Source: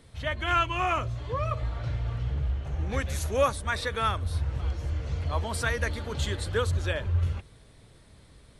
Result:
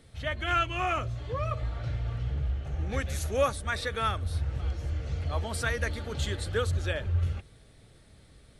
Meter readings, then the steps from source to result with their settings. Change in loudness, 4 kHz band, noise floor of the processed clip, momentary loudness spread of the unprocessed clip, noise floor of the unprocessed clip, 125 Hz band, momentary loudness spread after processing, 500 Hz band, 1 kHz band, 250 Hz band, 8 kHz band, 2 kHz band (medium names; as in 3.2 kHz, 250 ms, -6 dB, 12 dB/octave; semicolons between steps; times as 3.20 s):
-1.5 dB, -1.5 dB, -57 dBFS, 6 LU, -55 dBFS, -1.5 dB, 6 LU, -1.5 dB, -2.5 dB, -1.5 dB, -1.5 dB, -1.5 dB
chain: band-stop 1 kHz, Q 6.1; trim -1.5 dB